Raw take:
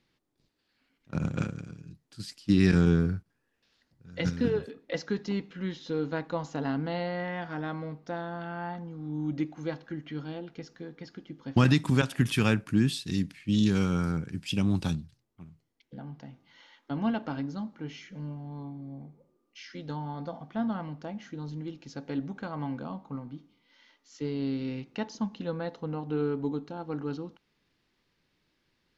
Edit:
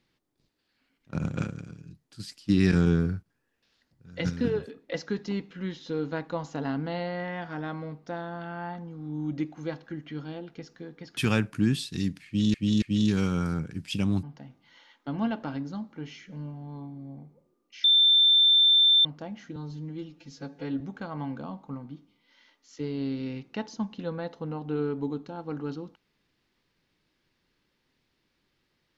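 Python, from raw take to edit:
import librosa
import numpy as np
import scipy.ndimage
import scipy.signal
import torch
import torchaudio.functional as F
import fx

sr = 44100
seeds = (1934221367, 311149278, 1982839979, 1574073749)

y = fx.edit(x, sr, fx.cut(start_s=11.17, length_s=1.14),
    fx.repeat(start_s=13.4, length_s=0.28, count=3),
    fx.cut(start_s=14.81, length_s=1.25),
    fx.bleep(start_s=19.67, length_s=1.21, hz=3560.0, db=-16.0),
    fx.stretch_span(start_s=21.39, length_s=0.83, factor=1.5), tone=tone)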